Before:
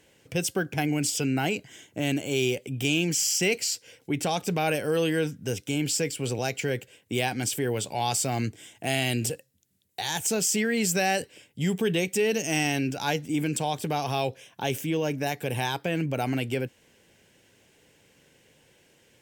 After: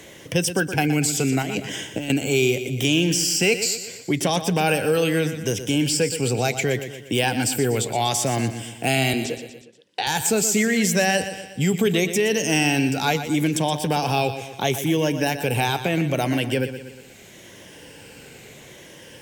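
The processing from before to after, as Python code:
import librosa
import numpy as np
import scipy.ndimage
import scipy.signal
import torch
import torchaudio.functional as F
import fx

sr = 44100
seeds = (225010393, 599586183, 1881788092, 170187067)

y = fx.spec_ripple(x, sr, per_octave=1.2, drift_hz=-0.75, depth_db=6)
y = fx.over_compress(y, sr, threshold_db=-35.0, ratio=-1.0, at=(1.42, 2.1))
y = fx.cheby1_bandpass(y, sr, low_hz=280.0, high_hz=3900.0, order=2, at=(9.13, 10.07))
y = fx.echo_feedback(y, sr, ms=120, feedback_pct=43, wet_db=-11.5)
y = fx.band_squash(y, sr, depth_pct=40)
y = F.gain(torch.from_numpy(y), 5.0).numpy()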